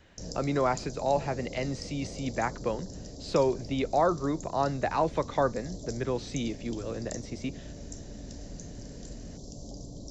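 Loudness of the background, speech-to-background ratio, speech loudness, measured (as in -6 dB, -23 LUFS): -43.0 LUFS, 12.0 dB, -31.0 LUFS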